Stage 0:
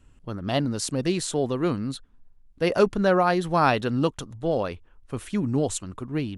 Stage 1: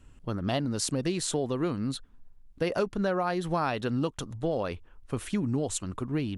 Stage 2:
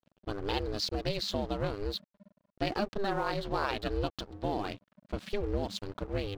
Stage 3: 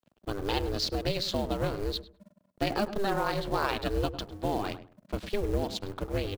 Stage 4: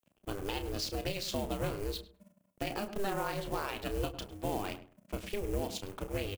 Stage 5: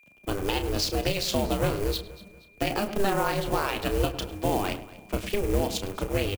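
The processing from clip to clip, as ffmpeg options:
ffmpeg -i in.wav -af "acompressor=threshold=-27dB:ratio=5,volume=1.5dB" out.wav
ffmpeg -i in.wav -af "aeval=exprs='val(0)*sin(2*PI*200*n/s)':channel_layout=same,highshelf=frequency=6300:width_type=q:width=3:gain=-13,aeval=exprs='sgn(val(0))*max(abs(val(0))-0.00376,0)':channel_layout=same" out.wav
ffmpeg -i in.wav -filter_complex "[0:a]acrossover=split=140[link_01][link_02];[link_02]acrusher=bits=5:mode=log:mix=0:aa=0.000001[link_03];[link_01][link_03]amix=inputs=2:normalize=0,asplit=2[link_04][link_05];[link_05]adelay=102,lowpass=frequency=1200:poles=1,volume=-11dB,asplit=2[link_06][link_07];[link_07]adelay=102,lowpass=frequency=1200:poles=1,volume=0.23,asplit=2[link_08][link_09];[link_09]adelay=102,lowpass=frequency=1200:poles=1,volume=0.23[link_10];[link_04][link_06][link_08][link_10]amix=inputs=4:normalize=0,volume=2.5dB" out.wav
ffmpeg -i in.wav -filter_complex "[0:a]alimiter=limit=-19dB:level=0:latency=1:release=222,aexciter=amount=1.2:drive=6.3:freq=2200,asplit=2[link_01][link_02];[link_02]adelay=32,volume=-10dB[link_03];[link_01][link_03]amix=inputs=2:normalize=0,volume=-5dB" out.wav
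ffmpeg -i in.wav -filter_complex "[0:a]aeval=exprs='val(0)+0.000562*sin(2*PI*2400*n/s)':channel_layout=same,acrossover=split=110|1500|5500[link_01][link_02][link_03][link_04];[link_01]acrusher=bits=3:mode=log:mix=0:aa=0.000001[link_05];[link_05][link_02][link_03][link_04]amix=inputs=4:normalize=0,aecho=1:1:238|476|714:0.112|0.0449|0.018,volume=9dB" out.wav

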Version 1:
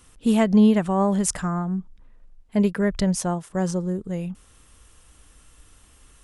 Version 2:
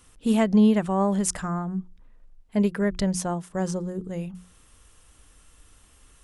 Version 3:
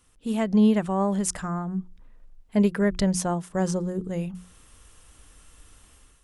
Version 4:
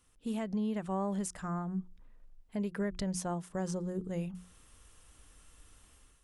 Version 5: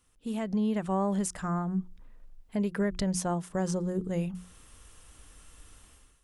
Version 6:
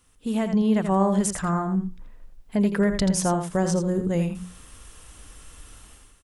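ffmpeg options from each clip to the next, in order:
ffmpeg -i in.wav -af "bandreject=frequency=60:width_type=h:width=6,bandreject=frequency=120:width_type=h:width=6,bandreject=frequency=180:width_type=h:width=6,bandreject=frequency=240:width_type=h:width=6,bandreject=frequency=300:width_type=h:width=6,bandreject=frequency=360:width_type=h:width=6,volume=-2dB" out.wav
ffmpeg -i in.wav -af "dynaudnorm=framelen=330:gausssize=3:maxgain=9.5dB,volume=-7dB" out.wav
ffmpeg -i in.wav -af "alimiter=limit=-20dB:level=0:latency=1:release=198,volume=-6.5dB" out.wav
ffmpeg -i in.wav -af "dynaudnorm=framelen=160:gausssize=5:maxgain=5.5dB" out.wav
ffmpeg -i in.wav -af "aecho=1:1:83:0.398,volume=7dB" out.wav

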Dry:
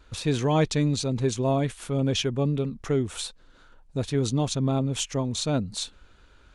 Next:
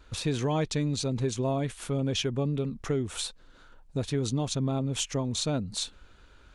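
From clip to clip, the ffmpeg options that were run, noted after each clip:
ffmpeg -i in.wav -af "acompressor=threshold=-26dB:ratio=2.5" out.wav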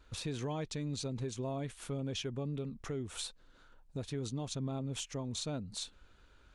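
ffmpeg -i in.wav -af "alimiter=limit=-22dB:level=0:latency=1:release=247,volume=-7dB" out.wav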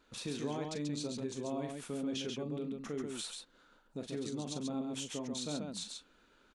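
ffmpeg -i in.wav -filter_complex "[0:a]lowshelf=frequency=140:width_type=q:width=1.5:gain=-13,asplit=2[link_01][link_02];[link_02]aecho=0:1:40.82|137:0.355|0.631[link_03];[link_01][link_03]amix=inputs=2:normalize=0,volume=-2dB" out.wav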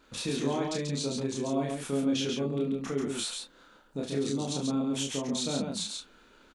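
ffmpeg -i in.wav -filter_complex "[0:a]asplit=2[link_01][link_02];[link_02]adelay=29,volume=-2dB[link_03];[link_01][link_03]amix=inputs=2:normalize=0,volume=6dB" out.wav

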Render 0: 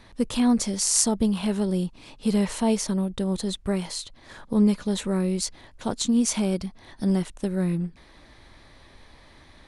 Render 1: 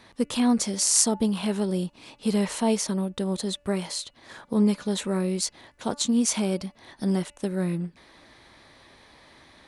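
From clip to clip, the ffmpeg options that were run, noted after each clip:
ffmpeg -i in.wav -af "highpass=frequency=200:poles=1,bandreject=frequency=289.8:width_type=h:width=4,bandreject=frequency=579.6:width_type=h:width=4,bandreject=frequency=869.4:width_type=h:width=4,bandreject=frequency=1159.2:width_type=h:width=4,bandreject=frequency=1449:width_type=h:width=4,bandreject=frequency=1738.8:width_type=h:width=4,bandreject=frequency=2028.6:width_type=h:width=4,bandreject=frequency=2318.4:width_type=h:width=4,bandreject=frequency=2608.2:width_type=h:width=4,bandreject=frequency=2898:width_type=h:width=4,volume=1dB" out.wav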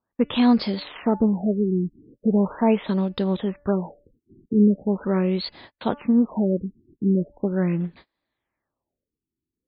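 ffmpeg -i in.wav -af "agate=range=-33dB:threshold=-47dB:ratio=16:detection=peak,afftfilt=real='re*lt(b*sr/1024,400*pow(5200/400,0.5+0.5*sin(2*PI*0.4*pts/sr)))':imag='im*lt(b*sr/1024,400*pow(5200/400,0.5+0.5*sin(2*PI*0.4*pts/sr)))':win_size=1024:overlap=0.75,volume=4.5dB" out.wav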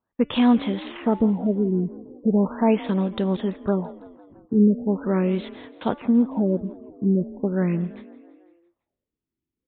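ffmpeg -i in.wav -filter_complex "[0:a]asplit=6[link_01][link_02][link_03][link_04][link_05][link_06];[link_02]adelay=167,afreqshift=34,volume=-18.5dB[link_07];[link_03]adelay=334,afreqshift=68,volume=-23.2dB[link_08];[link_04]adelay=501,afreqshift=102,volume=-28dB[link_09];[link_05]adelay=668,afreqshift=136,volume=-32.7dB[link_10];[link_06]adelay=835,afreqshift=170,volume=-37.4dB[link_11];[link_01][link_07][link_08][link_09][link_10][link_11]amix=inputs=6:normalize=0,aresample=8000,aresample=44100" out.wav

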